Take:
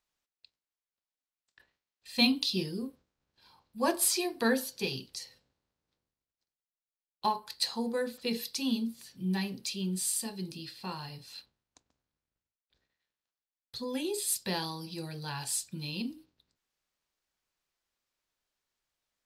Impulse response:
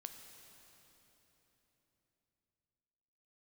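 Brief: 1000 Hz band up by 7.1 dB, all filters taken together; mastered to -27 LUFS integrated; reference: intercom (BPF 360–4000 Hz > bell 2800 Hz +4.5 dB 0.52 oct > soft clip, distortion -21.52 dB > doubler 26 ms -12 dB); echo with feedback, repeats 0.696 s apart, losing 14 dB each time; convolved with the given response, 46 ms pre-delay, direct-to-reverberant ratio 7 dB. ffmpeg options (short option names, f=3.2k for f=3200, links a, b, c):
-filter_complex "[0:a]equalizer=f=1k:t=o:g=8.5,aecho=1:1:696|1392:0.2|0.0399,asplit=2[a][b];[1:a]atrim=start_sample=2205,adelay=46[c];[b][c]afir=irnorm=-1:irlink=0,volume=-2.5dB[d];[a][d]amix=inputs=2:normalize=0,highpass=360,lowpass=4k,equalizer=f=2.8k:t=o:w=0.52:g=4.5,asoftclip=threshold=-14dB,asplit=2[e][f];[f]adelay=26,volume=-12dB[g];[e][g]amix=inputs=2:normalize=0,volume=6dB"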